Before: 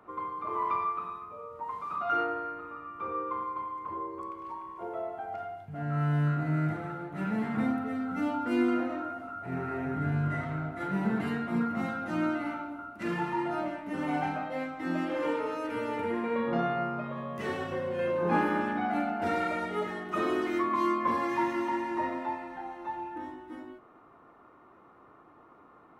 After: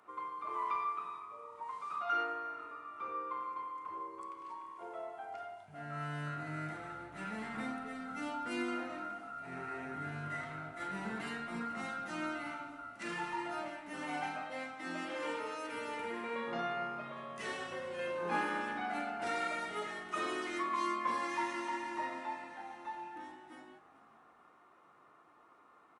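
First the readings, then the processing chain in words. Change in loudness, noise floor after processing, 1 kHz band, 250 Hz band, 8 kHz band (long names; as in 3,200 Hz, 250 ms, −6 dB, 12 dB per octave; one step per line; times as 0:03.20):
−7.5 dB, −63 dBFS, −6.0 dB, −12.5 dB, can't be measured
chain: spectral tilt +3.5 dB per octave
downsampling to 22,050 Hz
echo with shifted repeats 436 ms, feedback 57%, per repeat −40 Hz, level −19.5 dB
level −6 dB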